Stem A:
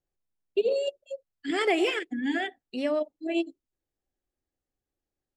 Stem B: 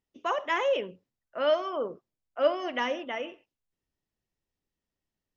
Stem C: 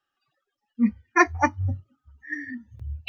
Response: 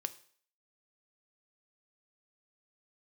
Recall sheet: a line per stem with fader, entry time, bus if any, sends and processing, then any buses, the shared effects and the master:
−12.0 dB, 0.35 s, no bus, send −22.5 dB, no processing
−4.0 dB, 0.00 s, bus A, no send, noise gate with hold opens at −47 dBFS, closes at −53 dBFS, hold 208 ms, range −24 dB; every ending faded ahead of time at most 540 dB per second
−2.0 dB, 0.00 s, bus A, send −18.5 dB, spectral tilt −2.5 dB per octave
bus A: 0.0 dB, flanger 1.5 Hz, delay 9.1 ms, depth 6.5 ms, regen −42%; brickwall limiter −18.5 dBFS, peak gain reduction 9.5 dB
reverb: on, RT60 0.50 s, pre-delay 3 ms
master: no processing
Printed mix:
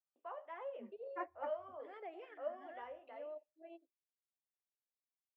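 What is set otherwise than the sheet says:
stem C −2.0 dB → −9.5 dB
master: extra four-pole ladder band-pass 790 Hz, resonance 30%

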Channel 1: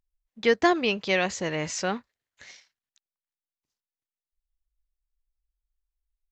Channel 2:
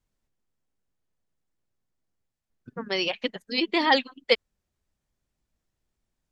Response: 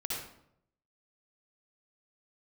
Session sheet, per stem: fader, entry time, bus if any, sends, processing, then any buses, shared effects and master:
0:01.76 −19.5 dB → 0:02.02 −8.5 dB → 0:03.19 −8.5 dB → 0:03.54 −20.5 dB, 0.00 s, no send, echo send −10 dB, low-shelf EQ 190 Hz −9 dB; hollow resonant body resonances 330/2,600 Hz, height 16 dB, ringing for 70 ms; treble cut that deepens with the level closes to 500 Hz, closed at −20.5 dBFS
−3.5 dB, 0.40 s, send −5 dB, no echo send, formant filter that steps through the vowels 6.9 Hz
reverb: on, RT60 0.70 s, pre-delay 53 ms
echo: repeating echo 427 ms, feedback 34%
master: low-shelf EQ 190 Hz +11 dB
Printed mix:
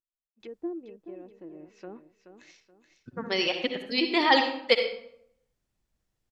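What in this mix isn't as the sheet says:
stem 2: missing formant filter that steps through the vowels 6.9 Hz
master: missing low-shelf EQ 190 Hz +11 dB

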